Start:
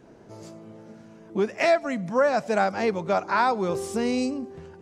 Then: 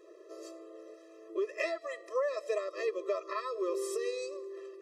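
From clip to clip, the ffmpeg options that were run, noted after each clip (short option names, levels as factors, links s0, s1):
-af "bandreject=f=236.9:t=h:w=4,bandreject=f=473.8:t=h:w=4,bandreject=f=710.7:t=h:w=4,bandreject=f=947.6:t=h:w=4,bandreject=f=1184.5:t=h:w=4,bandreject=f=1421.4:t=h:w=4,bandreject=f=1658.3:t=h:w=4,bandreject=f=1895.2:t=h:w=4,bandreject=f=2132.1:t=h:w=4,bandreject=f=2369:t=h:w=4,bandreject=f=2605.9:t=h:w=4,bandreject=f=2842.8:t=h:w=4,bandreject=f=3079.7:t=h:w=4,bandreject=f=3316.6:t=h:w=4,bandreject=f=3553.5:t=h:w=4,bandreject=f=3790.4:t=h:w=4,bandreject=f=4027.3:t=h:w=4,bandreject=f=4264.2:t=h:w=4,bandreject=f=4501.1:t=h:w=4,bandreject=f=4738:t=h:w=4,bandreject=f=4974.9:t=h:w=4,bandreject=f=5211.8:t=h:w=4,bandreject=f=5448.7:t=h:w=4,bandreject=f=5685.6:t=h:w=4,bandreject=f=5922.5:t=h:w=4,bandreject=f=6159.4:t=h:w=4,bandreject=f=6396.3:t=h:w=4,bandreject=f=6633.2:t=h:w=4,bandreject=f=6870.1:t=h:w=4,bandreject=f=7107:t=h:w=4,bandreject=f=7343.9:t=h:w=4,bandreject=f=7580.8:t=h:w=4,bandreject=f=7817.7:t=h:w=4,bandreject=f=8054.6:t=h:w=4,bandreject=f=8291.5:t=h:w=4,bandreject=f=8528.4:t=h:w=4,bandreject=f=8765.3:t=h:w=4,bandreject=f=9002.2:t=h:w=4,bandreject=f=9239.1:t=h:w=4,acompressor=threshold=0.0398:ratio=6,afftfilt=real='re*eq(mod(floor(b*sr/1024/340),2),1)':imag='im*eq(mod(floor(b*sr/1024/340),2),1)':win_size=1024:overlap=0.75"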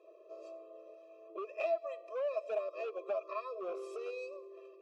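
-filter_complex "[0:a]equalizer=f=1300:w=2.3:g=-8.5,volume=33.5,asoftclip=hard,volume=0.0299,asplit=3[s0][s1][s2];[s0]bandpass=f=730:t=q:w=8,volume=1[s3];[s1]bandpass=f=1090:t=q:w=8,volume=0.501[s4];[s2]bandpass=f=2440:t=q:w=8,volume=0.355[s5];[s3][s4][s5]amix=inputs=3:normalize=0,volume=2.99"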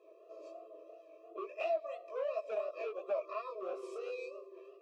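-af "flanger=delay=16:depth=7.9:speed=2.9,volume=1.33"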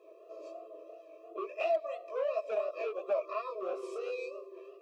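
-af "asoftclip=type=hard:threshold=0.0473,volume=1.58"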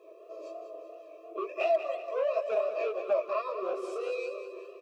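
-af "aecho=1:1:190|380|570|760|950:0.316|0.158|0.0791|0.0395|0.0198,volume=1.5"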